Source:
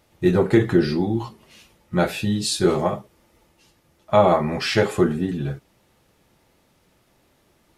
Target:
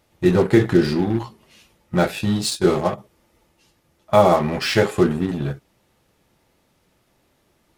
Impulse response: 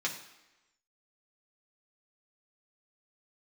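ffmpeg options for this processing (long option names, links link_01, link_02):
-filter_complex "[0:a]asplit=3[link_01][link_02][link_03];[link_01]afade=type=out:start_time=2.49:duration=0.02[link_04];[link_02]agate=range=-33dB:threshold=-19dB:ratio=3:detection=peak,afade=type=in:start_time=2.49:duration=0.02,afade=type=out:start_time=2.97:duration=0.02[link_05];[link_03]afade=type=in:start_time=2.97:duration=0.02[link_06];[link_04][link_05][link_06]amix=inputs=3:normalize=0,asplit=2[link_07][link_08];[link_08]acrusher=bits=3:mix=0:aa=0.5,volume=-5.5dB[link_09];[link_07][link_09]amix=inputs=2:normalize=0,volume=-2dB"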